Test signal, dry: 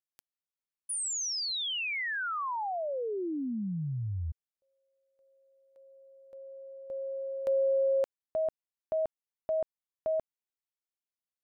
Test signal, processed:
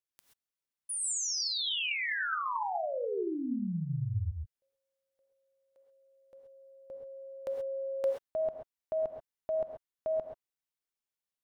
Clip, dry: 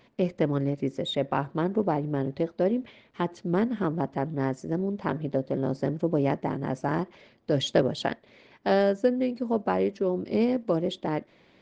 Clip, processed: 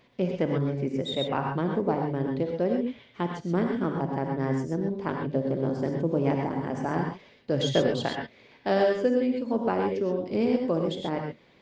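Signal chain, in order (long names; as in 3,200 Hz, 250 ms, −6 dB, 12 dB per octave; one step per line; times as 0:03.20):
reverb whose tail is shaped and stops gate 150 ms rising, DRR 2 dB
level −2 dB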